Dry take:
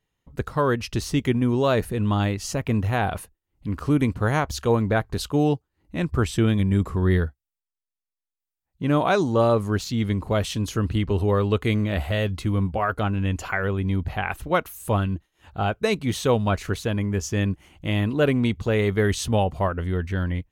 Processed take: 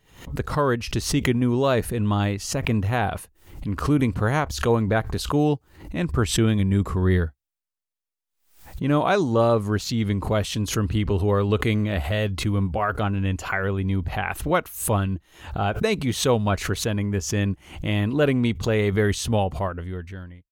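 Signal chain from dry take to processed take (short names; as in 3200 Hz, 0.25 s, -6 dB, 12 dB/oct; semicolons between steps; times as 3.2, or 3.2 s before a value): ending faded out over 1.24 s; backwards sustainer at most 110 dB/s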